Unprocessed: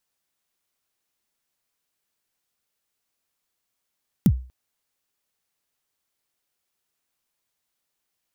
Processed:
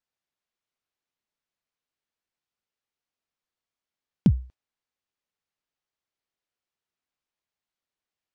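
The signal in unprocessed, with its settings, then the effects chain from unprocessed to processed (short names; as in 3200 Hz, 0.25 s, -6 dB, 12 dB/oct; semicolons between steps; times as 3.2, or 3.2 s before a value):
kick drum length 0.24 s, from 240 Hz, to 63 Hz, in 61 ms, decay 0.37 s, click on, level -9 dB
dynamic EQ 1100 Hz, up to +5 dB, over -42 dBFS, Q 0.75; gate -43 dBFS, range -7 dB; air absorption 99 m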